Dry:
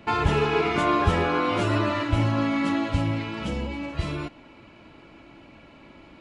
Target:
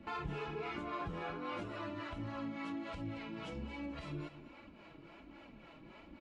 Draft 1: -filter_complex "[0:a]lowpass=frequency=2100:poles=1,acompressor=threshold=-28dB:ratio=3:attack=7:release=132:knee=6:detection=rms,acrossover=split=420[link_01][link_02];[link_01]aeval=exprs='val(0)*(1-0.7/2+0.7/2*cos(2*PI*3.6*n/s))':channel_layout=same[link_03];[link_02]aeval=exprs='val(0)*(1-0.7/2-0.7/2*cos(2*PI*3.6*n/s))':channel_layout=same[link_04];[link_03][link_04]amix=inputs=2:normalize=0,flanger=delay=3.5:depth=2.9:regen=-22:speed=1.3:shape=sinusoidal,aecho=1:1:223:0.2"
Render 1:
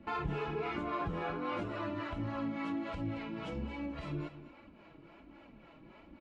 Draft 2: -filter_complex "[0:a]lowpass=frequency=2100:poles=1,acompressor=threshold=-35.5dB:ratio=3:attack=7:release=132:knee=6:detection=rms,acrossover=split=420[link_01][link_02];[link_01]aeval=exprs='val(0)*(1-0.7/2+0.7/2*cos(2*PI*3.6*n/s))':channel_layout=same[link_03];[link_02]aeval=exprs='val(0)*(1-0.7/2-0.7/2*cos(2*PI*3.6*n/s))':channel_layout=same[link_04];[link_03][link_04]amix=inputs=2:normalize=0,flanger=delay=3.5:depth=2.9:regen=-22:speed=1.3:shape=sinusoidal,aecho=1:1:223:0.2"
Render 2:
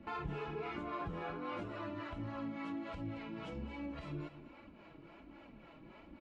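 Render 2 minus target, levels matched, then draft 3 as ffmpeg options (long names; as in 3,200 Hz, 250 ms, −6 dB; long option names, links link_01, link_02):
4,000 Hz band −3.0 dB
-filter_complex "[0:a]lowpass=frequency=5300:poles=1,acompressor=threshold=-35.5dB:ratio=3:attack=7:release=132:knee=6:detection=rms,acrossover=split=420[link_01][link_02];[link_01]aeval=exprs='val(0)*(1-0.7/2+0.7/2*cos(2*PI*3.6*n/s))':channel_layout=same[link_03];[link_02]aeval=exprs='val(0)*(1-0.7/2-0.7/2*cos(2*PI*3.6*n/s))':channel_layout=same[link_04];[link_03][link_04]amix=inputs=2:normalize=0,flanger=delay=3.5:depth=2.9:regen=-22:speed=1.3:shape=sinusoidal,aecho=1:1:223:0.2"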